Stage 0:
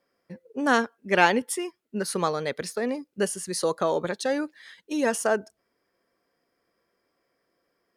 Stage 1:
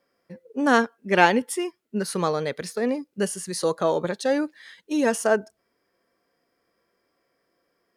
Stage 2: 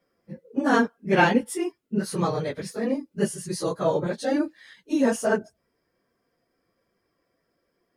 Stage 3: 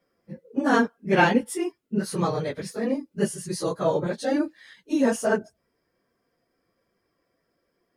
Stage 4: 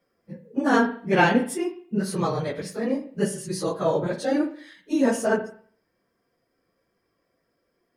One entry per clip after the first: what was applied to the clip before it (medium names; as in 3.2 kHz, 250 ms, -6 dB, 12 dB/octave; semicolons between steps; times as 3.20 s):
harmonic-percussive split harmonic +5 dB; trim -1 dB
phase randomisation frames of 50 ms; bass shelf 220 Hz +11 dB; trim -3.5 dB
no audible change
reverberation RT60 0.50 s, pre-delay 37 ms, DRR 9 dB